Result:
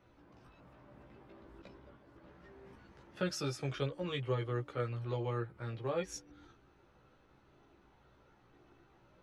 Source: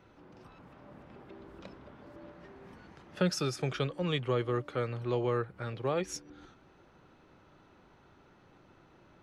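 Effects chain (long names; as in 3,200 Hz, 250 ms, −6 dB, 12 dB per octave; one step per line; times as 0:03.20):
multi-voice chorus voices 6, 0.24 Hz, delay 16 ms, depth 1.9 ms
0:01.62–0:02.24: downward expander −51 dBFS
level −2.5 dB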